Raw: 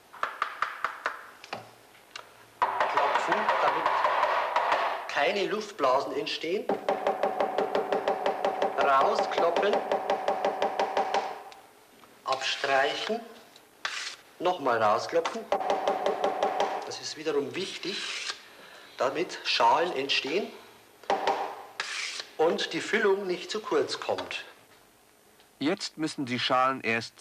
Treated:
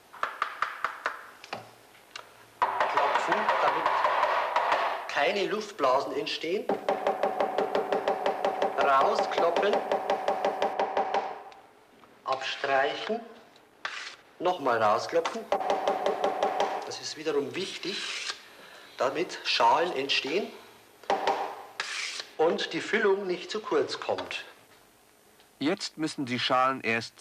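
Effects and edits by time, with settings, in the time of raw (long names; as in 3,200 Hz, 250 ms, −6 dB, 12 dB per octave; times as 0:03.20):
0:10.73–0:14.48: high-shelf EQ 4,400 Hz −11.5 dB
0:22.34–0:24.25: high-shelf EQ 8,300 Hz −9.5 dB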